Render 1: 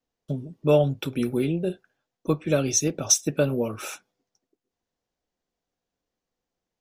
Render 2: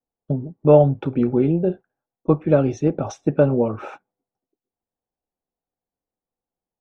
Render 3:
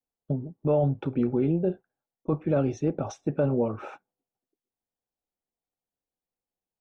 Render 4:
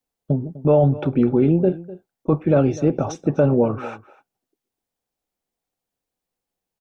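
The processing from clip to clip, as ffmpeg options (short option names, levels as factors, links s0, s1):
-af "agate=range=0.251:threshold=0.0126:ratio=16:detection=peak,lowpass=1200,equalizer=f=820:t=o:w=0.26:g=6,volume=2.11"
-af "alimiter=limit=0.316:level=0:latency=1:release=11,volume=0.531"
-filter_complex "[0:a]asplit=2[s0][s1];[s1]adelay=250.7,volume=0.126,highshelf=f=4000:g=-5.64[s2];[s0][s2]amix=inputs=2:normalize=0,volume=2.51"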